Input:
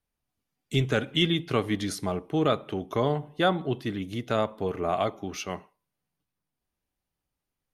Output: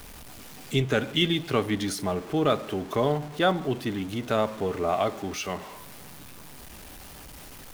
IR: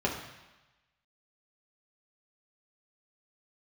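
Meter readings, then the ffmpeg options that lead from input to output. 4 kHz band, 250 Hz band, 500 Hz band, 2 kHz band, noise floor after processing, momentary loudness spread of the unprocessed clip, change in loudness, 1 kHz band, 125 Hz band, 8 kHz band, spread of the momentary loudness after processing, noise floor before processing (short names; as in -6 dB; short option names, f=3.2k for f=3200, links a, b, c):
+1.0 dB, +1.0 dB, +1.5 dB, +1.5 dB, -45 dBFS, 9 LU, +1.0 dB, +1.5 dB, -0.5 dB, +4.0 dB, 20 LU, under -85 dBFS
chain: -filter_complex "[0:a]aeval=exprs='val(0)+0.5*0.0133*sgn(val(0))':c=same,asplit=2[a][b];[1:a]atrim=start_sample=2205[c];[b][c]afir=irnorm=-1:irlink=0,volume=-27dB[d];[a][d]amix=inputs=2:normalize=0"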